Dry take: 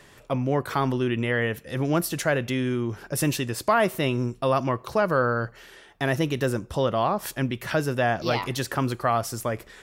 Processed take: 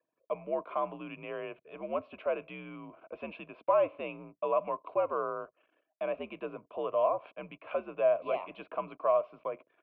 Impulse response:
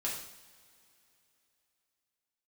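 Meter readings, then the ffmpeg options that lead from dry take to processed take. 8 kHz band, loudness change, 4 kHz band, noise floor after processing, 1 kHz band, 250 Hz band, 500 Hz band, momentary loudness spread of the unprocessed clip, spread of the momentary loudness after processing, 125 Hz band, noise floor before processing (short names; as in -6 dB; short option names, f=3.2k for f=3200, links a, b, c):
under -40 dB, -8.0 dB, under -20 dB, -83 dBFS, -8.0 dB, -18.5 dB, -5.0 dB, 6 LU, 15 LU, -27.5 dB, -53 dBFS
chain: -filter_complex "[0:a]anlmdn=0.0631,asplit=3[a][b][c];[a]bandpass=f=730:t=q:w=8,volume=0dB[d];[b]bandpass=f=1.09k:t=q:w=8,volume=-6dB[e];[c]bandpass=f=2.44k:t=q:w=8,volume=-9dB[f];[d][e][f]amix=inputs=3:normalize=0,highpass=f=210:t=q:w=0.5412,highpass=f=210:t=q:w=1.307,lowpass=f=3.2k:t=q:w=0.5176,lowpass=f=3.2k:t=q:w=0.7071,lowpass=f=3.2k:t=q:w=1.932,afreqshift=-78,volume=1.5dB"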